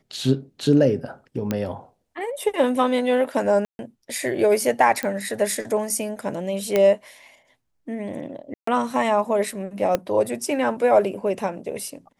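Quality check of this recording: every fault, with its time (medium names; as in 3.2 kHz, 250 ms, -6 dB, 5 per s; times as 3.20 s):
1.51 s: pop -10 dBFS
3.65–3.79 s: dropout 141 ms
5.03 s: pop -12 dBFS
6.76 s: pop -7 dBFS
8.54–8.67 s: dropout 134 ms
9.95 s: pop -8 dBFS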